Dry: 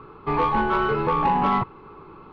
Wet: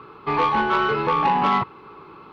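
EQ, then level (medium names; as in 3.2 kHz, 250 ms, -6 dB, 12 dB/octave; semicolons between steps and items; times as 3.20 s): high-pass 130 Hz 6 dB/octave; treble shelf 2 kHz +9.5 dB; 0.0 dB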